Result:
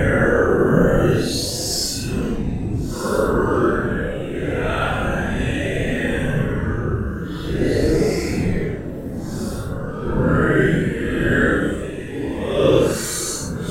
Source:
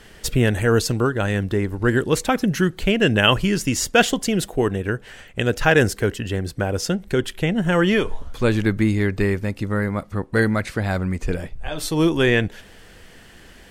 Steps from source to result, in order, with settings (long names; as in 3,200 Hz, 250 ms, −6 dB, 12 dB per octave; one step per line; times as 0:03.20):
random phases in short frames
delay that swaps between a low-pass and a high-pass 372 ms, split 1,100 Hz, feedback 82%, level −10 dB
extreme stretch with random phases 8.6×, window 0.05 s, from 0:00.65